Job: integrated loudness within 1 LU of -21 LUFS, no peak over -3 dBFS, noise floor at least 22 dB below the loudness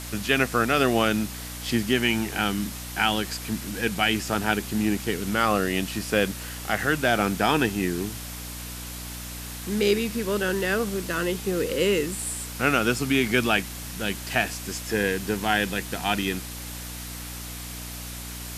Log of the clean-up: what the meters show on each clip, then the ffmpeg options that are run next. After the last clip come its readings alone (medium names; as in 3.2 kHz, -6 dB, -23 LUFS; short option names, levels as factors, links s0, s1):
hum 60 Hz; highest harmonic 300 Hz; hum level -36 dBFS; noise floor -36 dBFS; noise floor target -48 dBFS; loudness -25.5 LUFS; peak level -6.5 dBFS; loudness target -21.0 LUFS
-> -af "bandreject=f=60:t=h:w=4,bandreject=f=120:t=h:w=4,bandreject=f=180:t=h:w=4,bandreject=f=240:t=h:w=4,bandreject=f=300:t=h:w=4"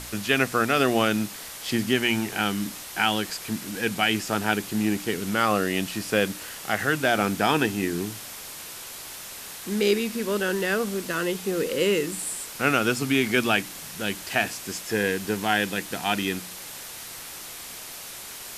hum not found; noise floor -39 dBFS; noise floor target -47 dBFS
-> -af "afftdn=nr=8:nf=-39"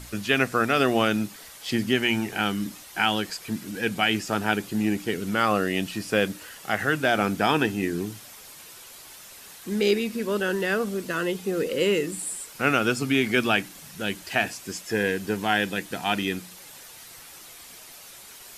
noise floor -46 dBFS; noise floor target -48 dBFS
-> -af "afftdn=nr=6:nf=-46"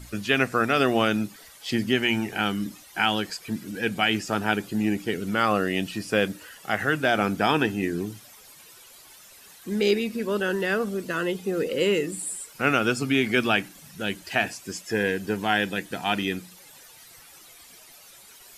noise floor -50 dBFS; loudness -25.5 LUFS; peak level -6.5 dBFS; loudness target -21.0 LUFS
-> -af "volume=1.68,alimiter=limit=0.708:level=0:latency=1"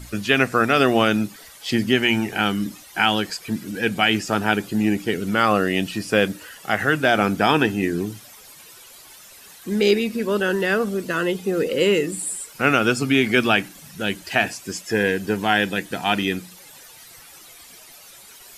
loudness -21.0 LUFS; peak level -3.0 dBFS; noise floor -45 dBFS